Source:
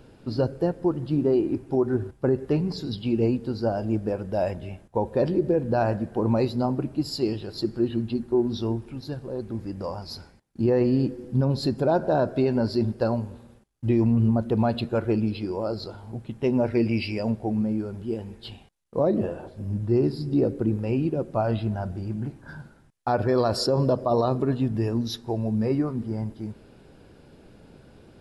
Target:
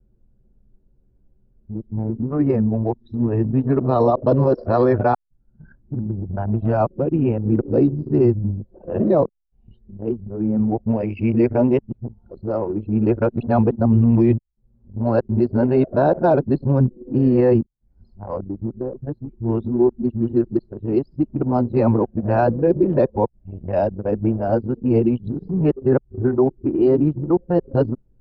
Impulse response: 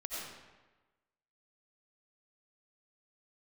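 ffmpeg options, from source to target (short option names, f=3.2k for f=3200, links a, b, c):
-filter_complex "[0:a]areverse,acrossover=split=2600[a][b];[b]acompressor=threshold=-53dB:ratio=4:attack=1:release=60[c];[a][c]amix=inputs=2:normalize=0,anlmdn=63.1,volume=6dB"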